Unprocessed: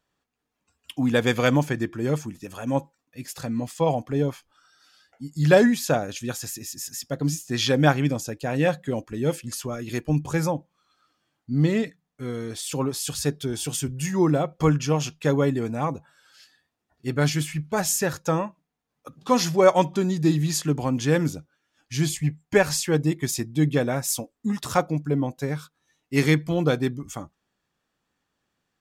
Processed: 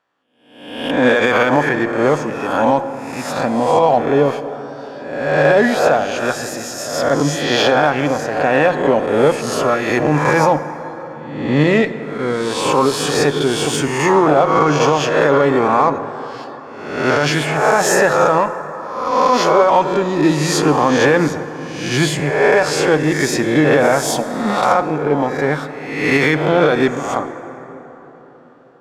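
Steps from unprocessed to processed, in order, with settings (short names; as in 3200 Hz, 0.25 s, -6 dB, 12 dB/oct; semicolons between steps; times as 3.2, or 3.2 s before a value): spectral swells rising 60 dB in 0.86 s; band-pass 1000 Hz, Q 0.75; AGC gain up to 9.5 dB; limiter -11.5 dBFS, peak gain reduction 10.5 dB; added harmonics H 8 -34 dB, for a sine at -11 dBFS; plate-style reverb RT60 4.4 s, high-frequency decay 0.4×, DRR 11 dB; gain +8 dB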